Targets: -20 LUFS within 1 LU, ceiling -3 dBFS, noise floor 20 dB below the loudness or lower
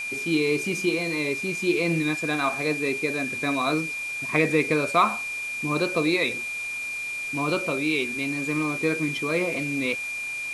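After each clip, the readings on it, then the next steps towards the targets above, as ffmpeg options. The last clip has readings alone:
steady tone 2.4 kHz; tone level -29 dBFS; noise floor -32 dBFS; noise floor target -45 dBFS; loudness -25.0 LUFS; peak level -7.5 dBFS; loudness target -20.0 LUFS
-> -af "bandreject=f=2400:w=30"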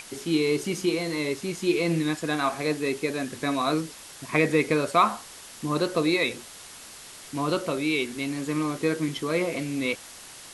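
steady tone not found; noise floor -45 dBFS; noise floor target -47 dBFS
-> -af "afftdn=nr=6:nf=-45"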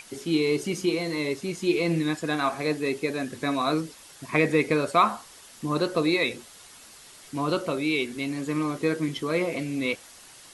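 noise floor -49 dBFS; loudness -26.5 LUFS; peak level -8.5 dBFS; loudness target -20.0 LUFS
-> -af "volume=2.11,alimiter=limit=0.708:level=0:latency=1"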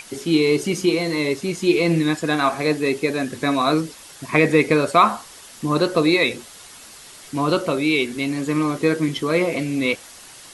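loudness -20.0 LUFS; peak level -3.0 dBFS; noise floor -43 dBFS

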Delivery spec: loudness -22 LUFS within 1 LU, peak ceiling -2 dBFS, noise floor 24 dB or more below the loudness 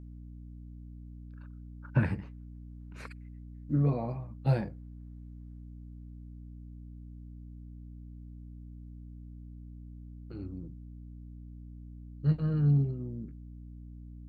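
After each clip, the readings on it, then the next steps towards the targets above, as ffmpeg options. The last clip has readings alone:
hum 60 Hz; highest harmonic 300 Hz; hum level -43 dBFS; loudness -31.5 LUFS; peak level -14.5 dBFS; loudness target -22.0 LUFS
-> -af "bandreject=f=60:t=h:w=4,bandreject=f=120:t=h:w=4,bandreject=f=180:t=h:w=4,bandreject=f=240:t=h:w=4,bandreject=f=300:t=h:w=4"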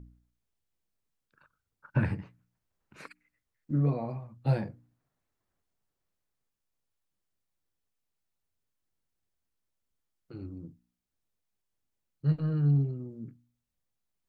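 hum not found; loudness -30.5 LUFS; peak level -15.0 dBFS; loudness target -22.0 LUFS
-> -af "volume=2.66"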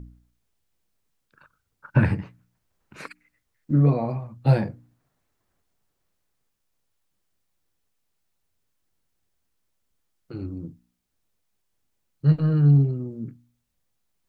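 loudness -22.5 LUFS; peak level -6.5 dBFS; noise floor -76 dBFS

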